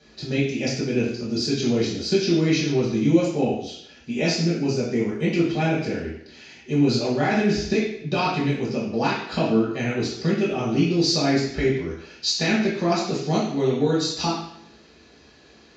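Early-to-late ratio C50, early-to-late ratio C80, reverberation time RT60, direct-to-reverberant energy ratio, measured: 3.0 dB, 6.0 dB, 0.70 s, -8.5 dB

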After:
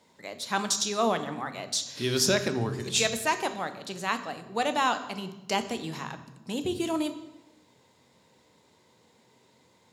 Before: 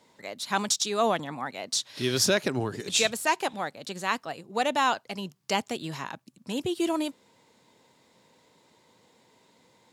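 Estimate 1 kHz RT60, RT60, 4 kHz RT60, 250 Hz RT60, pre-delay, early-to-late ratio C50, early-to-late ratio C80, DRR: 0.95 s, 1.1 s, 0.75 s, n/a, 3 ms, 11.5 dB, 13.5 dB, 9.0 dB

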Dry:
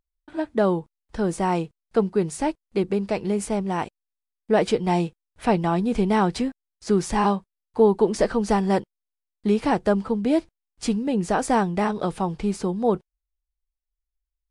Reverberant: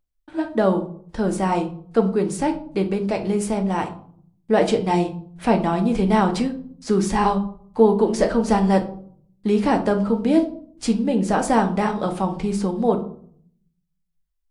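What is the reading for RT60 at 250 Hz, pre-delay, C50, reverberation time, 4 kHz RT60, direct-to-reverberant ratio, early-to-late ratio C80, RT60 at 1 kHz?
0.90 s, 4 ms, 12.5 dB, 0.55 s, 0.30 s, 5.0 dB, 16.5 dB, 0.50 s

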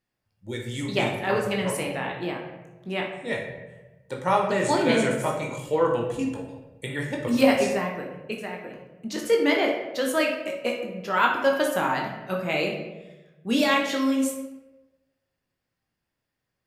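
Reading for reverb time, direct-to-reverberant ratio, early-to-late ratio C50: 1.1 s, 0.0 dB, 4.5 dB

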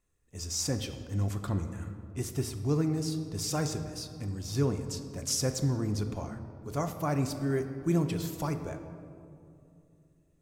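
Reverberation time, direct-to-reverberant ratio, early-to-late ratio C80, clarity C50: 2.7 s, 6.5 dB, 10.5 dB, 9.0 dB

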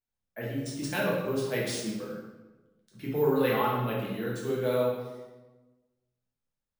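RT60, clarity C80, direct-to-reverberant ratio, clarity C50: 1.2 s, 4.0 dB, -5.5 dB, 1.0 dB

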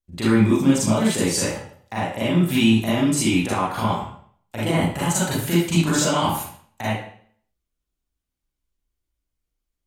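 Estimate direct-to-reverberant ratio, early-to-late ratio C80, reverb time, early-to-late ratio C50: -9.0 dB, 5.5 dB, 0.55 s, -0.5 dB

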